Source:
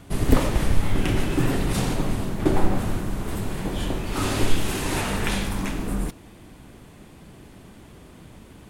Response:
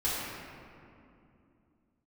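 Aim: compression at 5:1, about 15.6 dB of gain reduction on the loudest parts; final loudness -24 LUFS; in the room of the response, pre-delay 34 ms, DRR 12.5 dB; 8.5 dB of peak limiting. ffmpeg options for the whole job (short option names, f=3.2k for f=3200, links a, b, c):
-filter_complex "[0:a]acompressor=threshold=-28dB:ratio=5,alimiter=level_in=2.5dB:limit=-24dB:level=0:latency=1,volume=-2.5dB,asplit=2[a][b];[1:a]atrim=start_sample=2205,adelay=34[c];[b][c]afir=irnorm=-1:irlink=0,volume=-21.5dB[d];[a][d]amix=inputs=2:normalize=0,volume=14.5dB"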